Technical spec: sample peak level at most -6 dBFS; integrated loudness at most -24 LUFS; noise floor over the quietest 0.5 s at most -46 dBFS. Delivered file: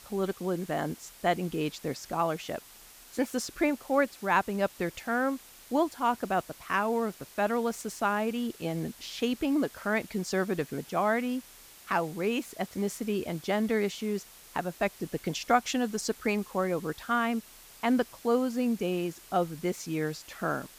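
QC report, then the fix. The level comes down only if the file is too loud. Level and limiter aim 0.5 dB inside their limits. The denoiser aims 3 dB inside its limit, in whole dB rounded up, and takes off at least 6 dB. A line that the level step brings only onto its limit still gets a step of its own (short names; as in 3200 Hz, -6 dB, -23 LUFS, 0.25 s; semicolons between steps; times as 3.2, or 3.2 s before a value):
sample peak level -11.0 dBFS: OK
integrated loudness -30.5 LUFS: OK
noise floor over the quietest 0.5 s -52 dBFS: OK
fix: none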